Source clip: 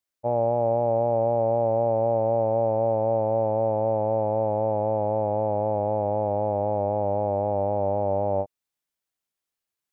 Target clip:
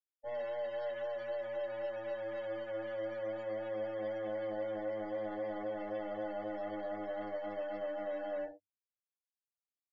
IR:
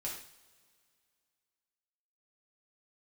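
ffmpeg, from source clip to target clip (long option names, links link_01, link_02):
-filter_complex "[0:a]lowpass=1400,lowshelf=frequency=450:gain=-10.5,acontrast=89,aresample=16000,asoftclip=type=tanh:threshold=-36dB,aresample=44100,equalizer=frequency=300:width=5.7:gain=10,bandreject=frequency=50:width_type=h:width=6,bandreject=frequency=100:width_type=h:width=6,bandreject=frequency=150:width_type=h:width=6,bandreject=frequency=200:width_type=h:width=6,bandreject=frequency=250:width_type=h:width=6,bandreject=frequency=300:width_type=h:width=6[link_01];[1:a]atrim=start_sample=2205,atrim=end_sample=6174[link_02];[link_01][link_02]afir=irnorm=-1:irlink=0,afftdn=noise_reduction=28:noise_floor=-43,volume=-4dB"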